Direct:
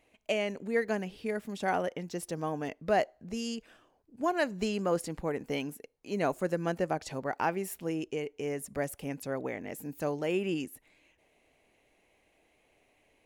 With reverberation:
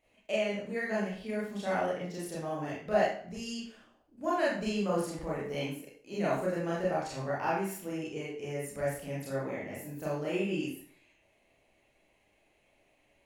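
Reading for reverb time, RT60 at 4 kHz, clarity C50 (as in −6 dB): 0.50 s, 0.45 s, 2.0 dB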